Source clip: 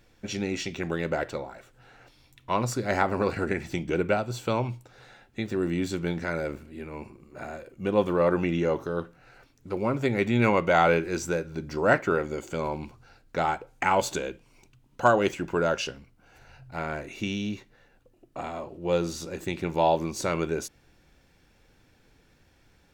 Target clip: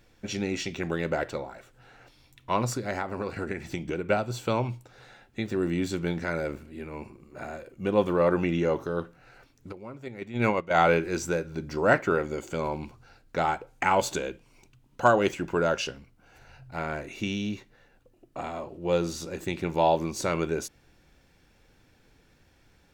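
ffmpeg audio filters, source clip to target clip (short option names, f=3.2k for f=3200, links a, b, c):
-filter_complex "[0:a]asettb=1/sr,asplit=3[a][b][c];[a]atrim=end=2.754[d];[b]atrim=start=2.75:end=4.1,asetpts=PTS-STARTPTS,afade=t=in:d=0.004:c=qsin,afade=t=out:st=1.346:d=0.004:c=qsin,acompressor=threshold=-28dB:ratio=6[e];[c]atrim=start=4.096[f];[d][e]acrossfade=d=0.004:c1=hsin:c2=qsin[g];[g][f]acrossfade=d=0.004:c1=qsin:c2=hsin,asplit=3[h][i][j];[h]afade=t=out:st=9.71:d=0.02[k];[i]agate=range=-15dB:threshold=-20dB:ratio=16:detection=peak,afade=t=in:st=9.71:d=0.02,afade=t=out:st=10.87:d=0.02[l];[j]afade=t=in:st=10.87:d=0.02[m];[k][l][m]amix=inputs=3:normalize=0"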